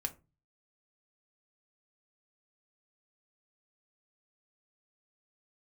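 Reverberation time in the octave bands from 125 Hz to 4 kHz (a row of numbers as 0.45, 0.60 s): 0.60, 0.40, 0.30, 0.25, 0.20, 0.15 s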